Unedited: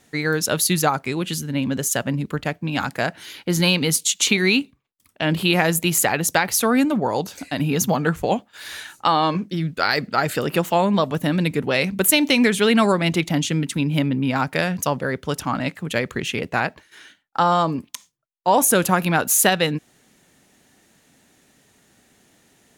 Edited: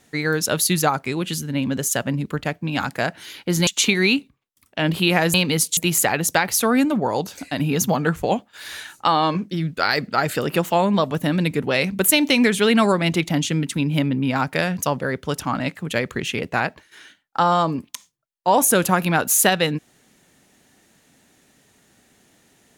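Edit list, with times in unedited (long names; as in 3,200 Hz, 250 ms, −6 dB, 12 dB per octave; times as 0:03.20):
0:03.67–0:04.10: move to 0:05.77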